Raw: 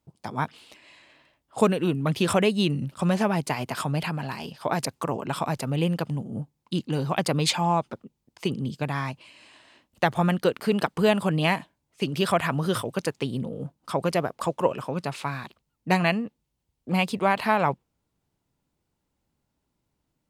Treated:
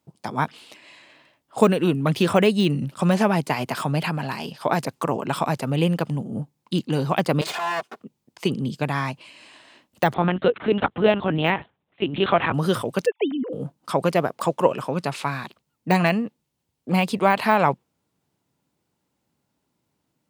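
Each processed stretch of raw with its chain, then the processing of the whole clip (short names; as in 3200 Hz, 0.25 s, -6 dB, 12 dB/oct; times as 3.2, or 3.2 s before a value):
7.41–8 minimum comb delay 2.8 ms + HPF 220 Hz + bell 300 Hz -14.5 dB 0.38 oct
10.14–12.54 LPC vocoder at 8 kHz pitch kept + HPF 41 Hz
13.06–13.53 sine-wave speech + dynamic EQ 720 Hz, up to +6 dB, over -42 dBFS, Q 1.9
whole clip: de-esser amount 75%; HPF 120 Hz; gain +4.5 dB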